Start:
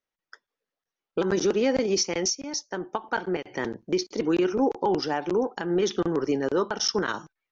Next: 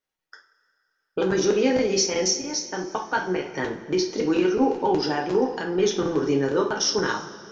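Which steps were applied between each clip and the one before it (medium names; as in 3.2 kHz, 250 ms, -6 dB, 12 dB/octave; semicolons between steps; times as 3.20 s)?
two-slope reverb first 0.33 s, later 2.6 s, from -18 dB, DRR 0 dB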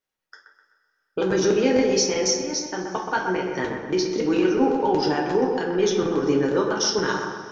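feedback echo behind a low-pass 127 ms, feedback 48%, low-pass 2.2 kHz, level -5 dB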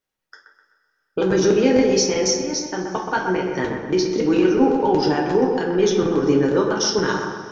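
bass shelf 330 Hz +4.5 dB; trim +1.5 dB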